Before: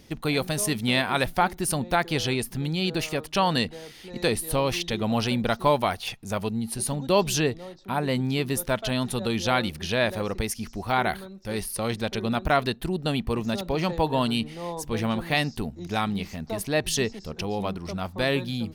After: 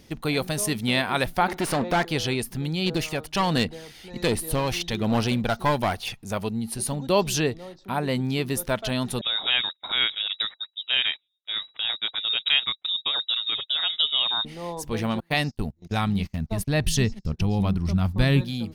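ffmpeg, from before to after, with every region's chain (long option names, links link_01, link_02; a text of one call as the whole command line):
ffmpeg -i in.wav -filter_complex "[0:a]asettb=1/sr,asplit=3[link_01][link_02][link_03];[link_01]atrim=end=1.484[link_04];[link_02]atrim=start=1.48:end=2.05,asetpts=PTS-STARTPTS,afade=type=in:duration=0.004:curve=qsin,afade=type=out:start_time=0.566:duration=0.004:curve=qsin,aeval=exprs='clip(val(0),-1,0.0237)':channel_layout=same,asplit=2[link_05][link_06];[link_06]highpass=frequency=720:poles=1,volume=22dB,asoftclip=type=tanh:threshold=-13dB[link_07];[link_05][link_07]amix=inputs=2:normalize=0,lowpass=frequency=2100:poles=1,volume=-6dB[link_08];[link_03]atrim=start=2.046[link_09];[link_04][link_08]acrossfade=duration=0.004:curve1=hsin:curve2=qsin[link_10];[link_10][link_09]acrossfade=duration=0.004:curve1=qsin:curve2=hsin,asettb=1/sr,asplit=3[link_11][link_12][link_13];[link_11]atrim=end=2.864[link_14];[link_12]atrim=start=2.86:end=6.22,asetpts=PTS-STARTPTS,afade=type=in:duration=0.004:curve=qsin,afade=type=out:start_time=3.356:duration=0.004:curve=qsin,aphaser=in_gain=1:out_gain=1:delay=1.4:decay=0.31:speed=1.3:type=sinusoidal,aeval=exprs='clip(val(0),-1,0.075)':channel_layout=same[link_15];[link_13]atrim=start=6.216[link_16];[link_14][link_15]acrossfade=duration=0.004:curve1=hsin:curve2=qsin[link_17];[link_17][link_16]acrossfade=duration=0.004:curve1=qsin:curve2=hsin,asettb=1/sr,asplit=3[link_18][link_19][link_20];[link_18]atrim=end=9.214[link_21];[link_19]atrim=start=9.21:end=14.45,asetpts=PTS-STARTPTS,afade=type=in:duration=0.004:curve=qsin,afade=type=out:start_time=5.236:duration=0.004:curve=qsin,agate=range=-37dB:threshold=-33dB:ratio=16:release=100:detection=peak,lowpass=frequency=3300:width_type=q:width=0.5098,lowpass=frequency=3300:width_type=q:width=0.6013,lowpass=frequency=3300:width_type=q:width=0.9,lowpass=frequency=3300:width_type=q:width=2.563,afreqshift=-3900[link_22];[link_20]atrim=start=14.446[link_23];[link_21][link_22]acrossfade=duration=0.004:curve1=hsin:curve2=qsin[link_24];[link_24][link_23]acrossfade=duration=0.004:curve1=qsin:curve2=hsin,asettb=1/sr,asplit=3[link_25][link_26][link_27];[link_25]atrim=end=15.204[link_28];[link_26]atrim=start=15.2:end=18.41,asetpts=PTS-STARTPTS,afade=type=in:duration=0.004:curve=qsin,afade=type=out:start_time=3.206:duration=0.004:curve=qsin,asubboost=boost=9:cutoff=180,agate=range=-29dB:threshold=-31dB:ratio=16:release=100:detection=peak[link_29];[link_27]atrim=start=18.406[link_30];[link_28][link_29]acrossfade=duration=0.004:curve1=hsin:curve2=qsin[link_31];[link_31][link_30]acrossfade=duration=0.004:curve1=qsin:curve2=hsin" out.wav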